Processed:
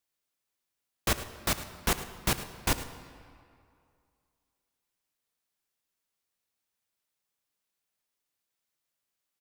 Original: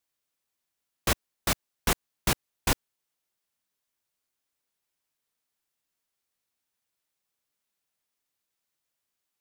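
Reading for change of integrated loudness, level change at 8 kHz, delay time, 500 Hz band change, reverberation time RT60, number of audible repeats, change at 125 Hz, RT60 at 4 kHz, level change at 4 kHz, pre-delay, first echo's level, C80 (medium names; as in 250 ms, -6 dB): -1.5 dB, -1.5 dB, 105 ms, -1.5 dB, 2.4 s, 1, -1.5 dB, 1.5 s, -1.5 dB, 9 ms, -15.0 dB, 11.0 dB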